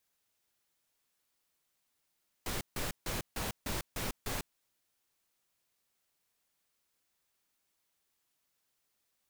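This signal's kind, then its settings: noise bursts pink, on 0.15 s, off 0.15 s, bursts 7, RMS -36 dBFS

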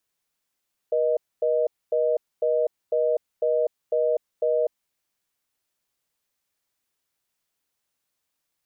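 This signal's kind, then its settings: call progress tone reorder tone, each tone -22 dBFS 3.85 s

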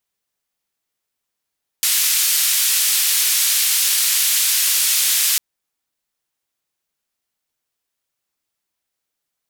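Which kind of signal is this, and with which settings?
noise band 2500–15000 Hz, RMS -17 dBFS 3.55 s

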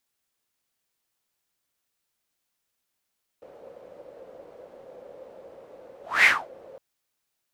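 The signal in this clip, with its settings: whoosh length 3.36 s, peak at 2.83, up 0.24 s, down 0.25 s, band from 530 Hz, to 2100 Hz, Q 7.7, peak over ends 31 dB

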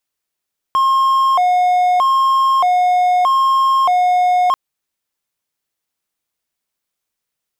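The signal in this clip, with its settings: siren hi-lo 723–1070 Hz 0.8/s triangle -8.5 dBFS 3.79 s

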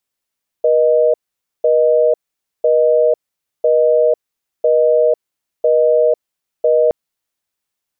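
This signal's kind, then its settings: call progress tone busy tone, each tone -12 dBFS 6.27 s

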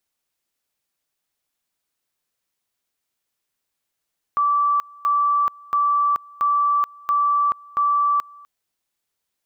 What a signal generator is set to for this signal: two-level tone 1160 Hz -15.5 dBFS, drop 25.5 dB, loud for 0.43 s, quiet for 0.25 s, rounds 6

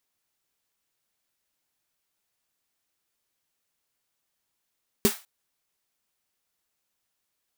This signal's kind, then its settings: snare drum length 0.20 s, tones 220 Hz, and 400 Hz, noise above 660 Hz, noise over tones -6 dB, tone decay 0.10 s, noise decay 0.30 s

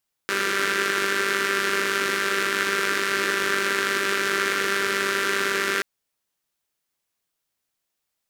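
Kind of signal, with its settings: four-cylinder engine model, steady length 5.53 s, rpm 5900, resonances 390/1500 Hz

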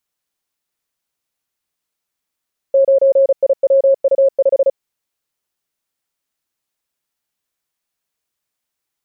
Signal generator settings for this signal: Morse "9IWU5" 35 wpm 544 Hz -7.5 dBFS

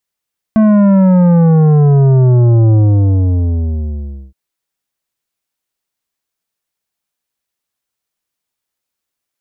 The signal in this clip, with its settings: sub drop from 220 Hz, over 3.77 s, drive 10.5 dB, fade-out 1.60 s, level -6.5 dB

